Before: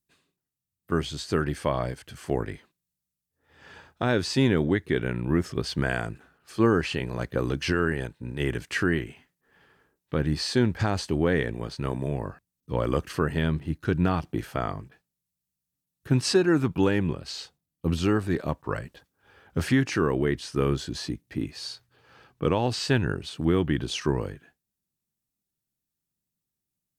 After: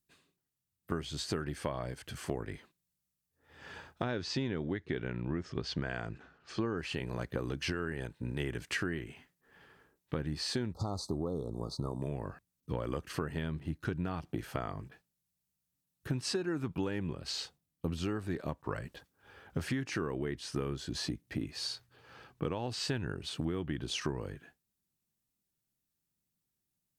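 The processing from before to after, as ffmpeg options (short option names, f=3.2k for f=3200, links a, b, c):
-filter_complex "[0:a]asettb=1/sr,asplit=3[a][b][c];[a]atrim=end=4.034[d];[b]atrim=start=4.03:end=6.78,asetpts=PTS-STARTPTS,afade=t=in:d=0.004:c=qsin,afade=t=out:st=2.746:d=0.004:c=qsin,lowpass=f=6.3k:w=0.5412,lowpass=f=6.3k:w=1.3066[e];[c]atrim=start=6.776[f];[d][e]acrossfade=d=0.004:c1=hsin:c2=qsin[g];[g][f]acrossfade=d=0.004:c1=qsin:c2=hsin,asettb=1/sr,asplit=3[h][i][j];[h]atrim=end=10.734[k];[i]atrim=start=10.73:end=12.02,asetpts=PTS-STARTPTS,afade=t=in:d=0.004:c=qsin,afade=t=out:st=1.286:d=0.004:c=qsin,asuperstop=centerf=2200:order=20:qfactor=0.92[l];[j]atrim=start=12.016[m];[k][l]acrossfade=d=0.004:c1=hsin:c2=qsin[n];[n][m]acrossfade=d=0.004:c1=qsin:c2=hsin,acompressor=threshold=-32dB:ratio=6"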